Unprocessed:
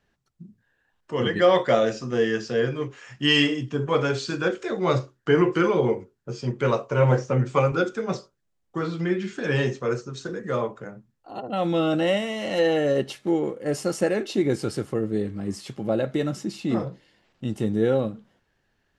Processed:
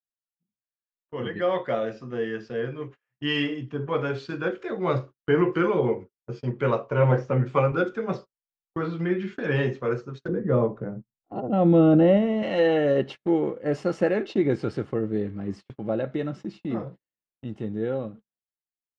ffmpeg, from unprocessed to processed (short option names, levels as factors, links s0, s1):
-filter_complex "[0:a]asettb=1/sr,asplit=3[s0][s1][s2];[s0]atrim=end=10.284[s3];[s1]atrim=start=10.28:end=12.43,asetpts=PTS-STARTPTS,afade=t=in:d=0.004:c=qsin,afade=t=out:st=2.146:d=0.004:c=qsin,tiltshelf=f=820:g=9.5[s4];[s2]atrim=start=12.426[s5];[s3][s4]acrossfade=d=0.004:c1=hsin:c2=qsin[s6];[s6][s5]acrossfade=d=0.004:c1=qsin:c2=hsin,lowpass=2800,agate=range=0.0224:threshold=0.0158:ratio=16:detection=peak,dynaudnorm=f=370:g=21:m=3.76,volume=0.447"